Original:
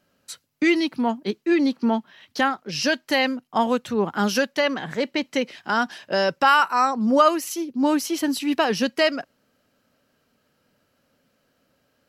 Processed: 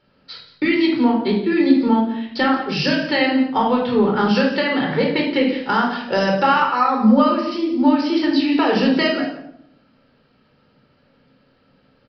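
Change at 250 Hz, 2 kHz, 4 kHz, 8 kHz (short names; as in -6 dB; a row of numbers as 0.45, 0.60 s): +7.0 dB, +2.0 dB, +2.5 dB, under -10 dB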